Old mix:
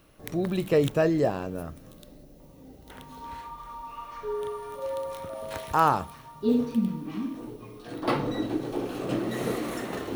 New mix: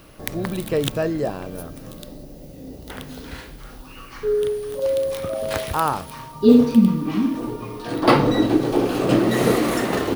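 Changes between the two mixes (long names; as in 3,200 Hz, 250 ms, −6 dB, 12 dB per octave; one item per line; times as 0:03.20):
first sound +11.5 dB
second sound: entry +2.90 s
master: remove notch filter 4,800 Hz, Q 15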